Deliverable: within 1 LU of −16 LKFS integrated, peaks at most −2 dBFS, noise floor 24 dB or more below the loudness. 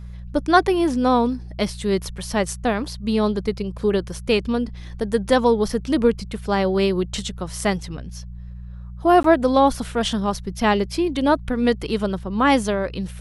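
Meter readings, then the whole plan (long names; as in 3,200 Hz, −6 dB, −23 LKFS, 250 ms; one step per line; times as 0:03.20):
number of dropouts 1; longest dropout 13 ms; mains hum 60 Hz; hum harmonics up to 180 Hz; level of the hum −33 dBFS; integrated loudness −21.0 LKFS; sample peak −2.5 dBFS; target loudness −16.0 LKFS
→ repair the gap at 0:09.23, 13 ms
hum removal 60 Hz, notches 3
level +5 dB
brickwall limiter −2 dBFS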